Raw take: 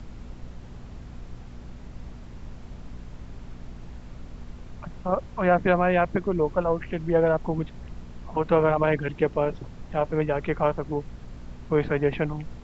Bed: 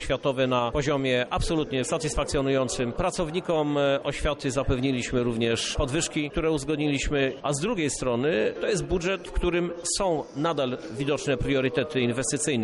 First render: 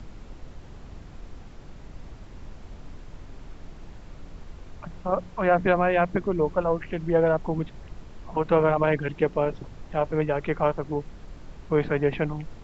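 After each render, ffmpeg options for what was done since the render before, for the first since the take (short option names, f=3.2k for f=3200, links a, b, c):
-af "bandreject=f=60:t=h:w=4,bandreject=f=120:t=h:w=4,bandreject=f=180:t=h:w=4,bandreject=f=240:t=h:w=4"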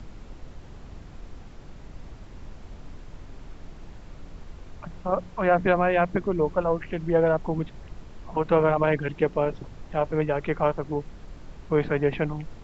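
-af anull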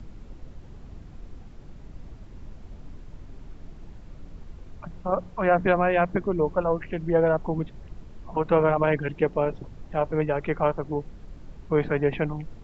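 -af "afftdn=nr=6:nf=-45"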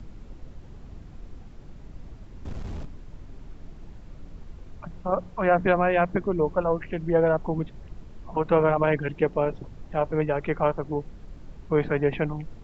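-filter_complex "[0:a]asplit=3[a][b][c];[a]afade=t=out:st=2.44:d=0.02[d];[b]aeval=exprs='0.0335*sin(PI/2*3.16*val(0)/0.0335)':c=same,afade=t=in:st=2.44:d=0.02,afade=t=out:st=2.84:d=0.02[e];[c]afade=t=in:st=2.84:d=0.02[f];[d][e][f]amix=inputs=3:normalize=0"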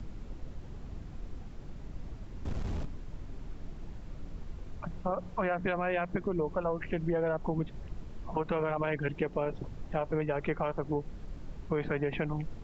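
-filter_complex "[0:a]acrossover=split=1700[a][b];[a]alimiter=limit=-17.5dB:level=0:latency=1:release=104[c];[c][b]amix=inputs=2:normalize=0,acompressor=threshold=-28dB:ratio=3"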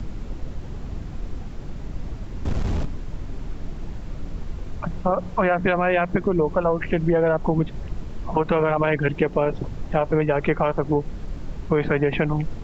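-af "volume=11dB"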